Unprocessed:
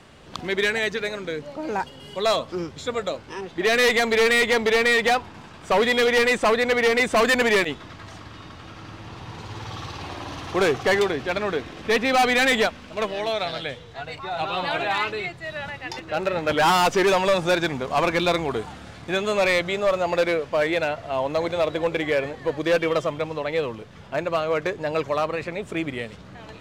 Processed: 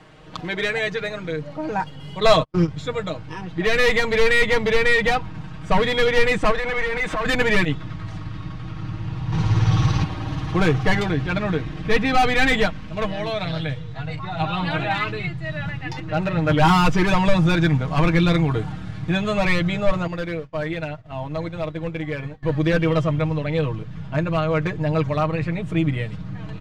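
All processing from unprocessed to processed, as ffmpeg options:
-filter_complex "[0:a]asettb=1/sr,asplit=3[s0][s1][s2];[s0]atrim=end=2.204[s3];[s1]atrim=start=2.2:end=2.68,asetpts=PTS-STARTPTS,afade=t=in:d=0.004:c=qsin,afade=t=out:st=0.476:d=0.004:c=qsin,agate=range=0.00447:threshold=0.0316:ratio=16:release=100:detection=peak,acontrast=66[s4];[s2]atrim=start=2.676[s5];[s3][s4]acrossfade=d=0.004:c1=hsin:c2=qsin[s6];[s6][s5]acrossfade=d=0.004:c1=qsin:c2=hsin,asettb=1/sr,asplit=3[s7][s8][s9];[s7]atrim=end=6.514[s10];[s8]atrim=start=6.51:end=7.26,asetpts=PTS-STARTPTS,afade=t=in:d=0.004:c=qsin,afade=t=out:st=0.746:d=0.004:c=qsin,lowshelf=f=380:g=-9,acompressor=threshold=0.0447:ratio=10:attack=3.2:release=140:knee=1:detection=peak,asplit=2[s11][s12];[s12]highpass=f=720:p=1,volume=12.6,asoftclip=type=tanh:threshold=0.178[s13];[s11][s13]amix=inputs=2:normalize=0,lowpass=f=1800:p=1,volume=0.501[s14];[s9]atrim=start=7.256[s15];[s10][s14]acrossfade=d=0.004:c1=hsin:c2=qsin[s16];[s16][s15]acrossfade=d=0.004:c1=qsin:c2=hsin,asettb=1/sr,asplit=3[s17][s18][s19];[s17]atrim=end=9.324[s20];[s18]atrim=start=9.32:end=10.04,asetpts=PTS-STARTPTS,afade=t=in:d=0.004:c=qsin,afade=t=out:st=0.716:d=0.004:c=qsin,acontrast=79,equalizer=f=5900:t=o:w=0.23:g=6.5[s21];[s19]atrim=start=10.036[s22];[s20][s21]acrossfade=d=0.004:c1=hsin:c2=qsin[s23];[s23][s22]acrossfade=d=0.004:c1=qsin:c2=hsin,asettb=1/sr,asplit=3[s24][s25][s26];[s24]atrim=end=20.074[s27];[s25]atrim=start=20.07:end=22.43,asetpts=PTS-STARTPTS,afade=t=in:d=0.004:c=qsin,afade=t=out:st=2.356:d=0.004:c=qsin,acompressor=threshold=0.0398:ratio=2:attack=3.2:release=140:knee=1:detection=peak,aeval=exprs='sgn(val(0))*max(abs(val(0))-0.00112,0)':c=same,agate=range=0.0224:threshold=0.0398:ratio=3:release=100:detection=peak[s28];[s26]atrim=start=22.426[s29];[s27][s28]acrossfade=d=0.004:c1=hsin:c2=qsin[s30];[s30][s29]acrossfade=d=0.004:c1=qsin:c2=hsin,highshelf=f=5300:g=-11,aecho=1:1:6.4:0.75,asubboost=boost=6.5:cutoff=170"

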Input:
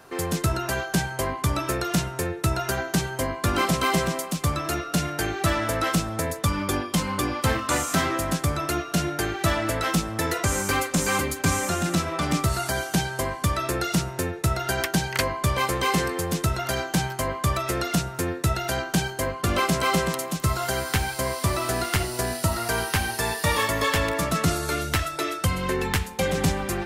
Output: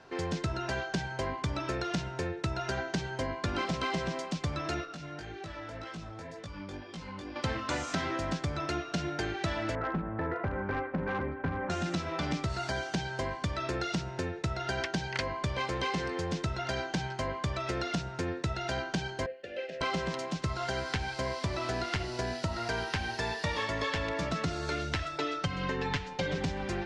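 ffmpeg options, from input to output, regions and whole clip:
-filter_complex "[0:a]asettb=1/sr,asplit=3[s0][s1][s2];[s0]atrim=end=4.854[s3];[s1]atrim=start=4.85:end=7.36,asetpts=PTS-STARTPTS,afade=t=in:d=0.004:c=qsin,afade=t=out:st=2.506:d=0.004:c=qsin,acompressor=threshold=0.0282:ratio=8:attack=3.2:release=140:knee=1:detection=peak,flanger=delay=17.5:depth=3.2:speed=1.9[s4];[s2]atrim=start=7.356[s5];[s3][s4]acrossfade=d=0.004:c1=hsin:c2=qsin[s6];[s6][s5]acrossfade=d=0.004:c1=qsin:c2=hsin,asettb=1/sr,asplit=3[s7][s8][s9];[s7]atrim=end=9.754[s10];[s8]atrim=start=9.75:end=11.7,asetpts=PTS-STARTPTS,afade=t=in:d=0.004:c=qsin,afade=t=out:st=1.946:d=0.004:c=qsin,lowpass=f=1700:w=0.5412,lowpass=f=1700:w=1.3066,bandreject=f=60:t=h:w=6,bandreject=f=120:t=h:w=6,bandreject=f=180:t=h:w=6,bandreject=f=240:t=h:w=6,bandreject=f=300:t=h:w=6,aeval=exprs='clip(val(0),-1,0.0944)':c=same[s11];[s9]atrim=start=11.696[s12];[s10][s11]acrossfade=d=0.004:c1=hsin:c2=qsin[s13];[s13][s12]acrossfade=d=0.004:c1=qsin:c2=hsin,asettb=1/sr,asplit=3[s14][s15][s16];[s14]atrim=end=19.264[s17];[s15]atrim=start=19.26:end=19.81,asetpts=PTS-STARTPTS,afade=t=in:d=0.004:c=qsin,afade=t=out:st=0.546:d=0.004:c=qsin,asplit=3[s18][s19][s20];[s18]bandpass=f=530:t=q:w=8,volume=1[s21];[s19]bandpass=f=1840:t=q:w=8,volume=0.501[s22];[s20]bandpass=f=2480:t=q:w=8,volume=0.355[s23];[s21][s22][s23]amix=inputs=3:normalize=0,highshelf=f=5000:g=8.5[s24];[s16]atrim=start=19.806[s25];[s17][s24]acrossfade=d=0.004:c1=hsin:c2=qsin[s26];[s26][s25]acrossfade=d=0.004:c1=qsin:c2=hsin,asettb=1/sr,asplit=3[s27][s28][s29];[s27]atrim=end=25.184[s30];[s28]atrim=start=25.18:end=26.38,asetpts=PTS-STARTPTS,afade=t=in:d=0.004:c=qsin,afade=t=out:st=1.196:d=0.004:c=qsin,lowpass=7100,aecho=1:1:7:0.88,atrim=end_sample=52920[s31];[s29]atrim=start=26.376[s32];[s30][s31]acrossfade=d=0.004:c1=hsin:c2=qsin[s33];[s33][s32]acrossfade=d=0.004:c1=qsin:c2=hsin,lowpass=f=5700:w=0.5412,lowpass=f=5700:w=1.3066,bandreject=f=1200:w=9.5,acompressor=threshold=0.0631:ratio=6,volume=0.596"

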